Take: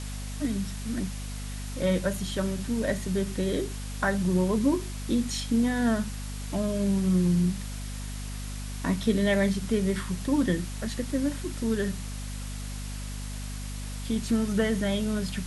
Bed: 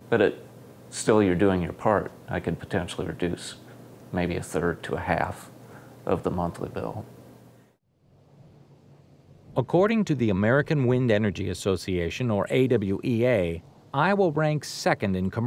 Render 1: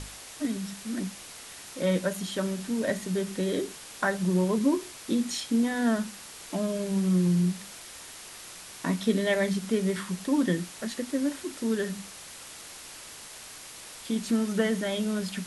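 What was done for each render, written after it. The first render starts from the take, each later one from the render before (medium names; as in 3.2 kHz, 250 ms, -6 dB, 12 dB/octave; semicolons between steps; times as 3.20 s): hum notches 50/100/150/200/250 Hz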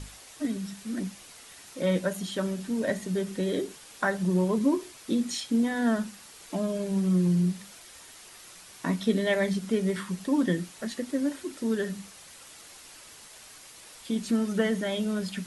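noise reduction 6 dB, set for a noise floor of -45 dBFS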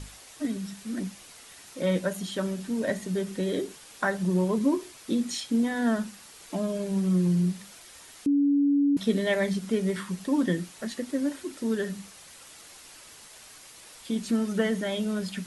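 8.26–8.97 s: bleep 284 Hz -19 dBFS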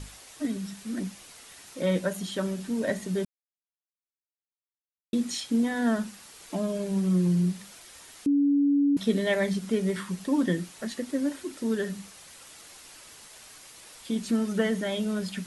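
3.25–5.13 s: mute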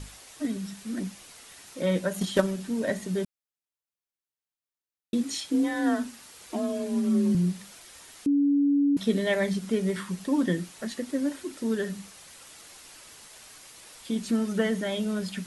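2.13–2.56 s: transient shaper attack +12 dB, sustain +5 dB; 5.23–7.35 s: frequency shift +32 Hz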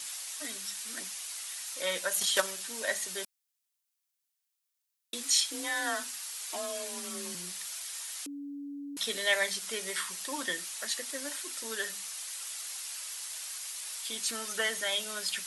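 high-pass 830 Hz 12 dB/octave; treble shelf 3 kHz +11.5 dB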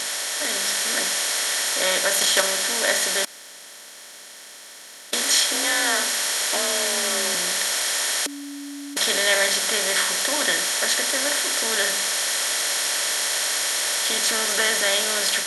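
spectral levelling over time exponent 0.4; level rider gain up to 4 dB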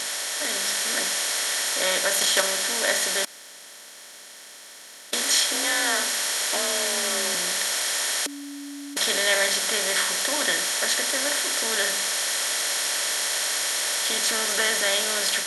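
trim -2 dB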